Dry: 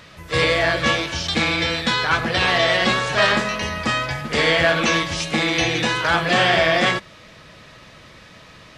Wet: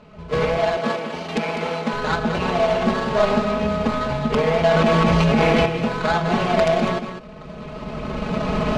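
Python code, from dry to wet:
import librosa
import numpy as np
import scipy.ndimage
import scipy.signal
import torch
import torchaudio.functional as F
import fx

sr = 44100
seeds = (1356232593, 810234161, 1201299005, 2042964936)

y = scipy.ndimage.median_filter(x, 25, mode='constant')
y = fx.recorder_agc(y, sr, target_db=-13.5, rise_db_per_s=16.0, max_gain_db=30)
y = fx.highpass(y, sr, hz=250.0, slope=12, at=(0.57, 1.93))
y = (np.mod(10.0 ** (9.5 / 20.0) * y + 1.0, 2.0) - 1.0) / 10.0 ** (9.5 / 20.0)
y = scipy.signal.sosfilt(scipy.signal.butter(2, 4700.0, 'lowpass', fs=sr, output='sos'), y)
y = y + 0.92 * np.pad(y, (int(4.7 * sr / 1000.0), 0))[:len(y)]
y = y + 10.0 ** (-9.0 / 20.0) * np.pad(y, (int(201 * sr / 1000.0), 0))[:len(y)]
y = fx.env_flatten(y, sr, amount_pct=100, at=(4.71, 5.66))
y = F.gain(torch.from_numpy(y), -1.0).numpy()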